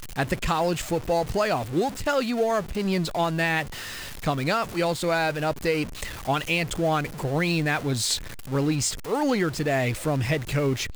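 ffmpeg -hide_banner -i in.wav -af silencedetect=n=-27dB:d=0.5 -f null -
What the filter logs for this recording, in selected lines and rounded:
silence_start: 3.62
silence_end: 4.24 | silence_duration: 0.61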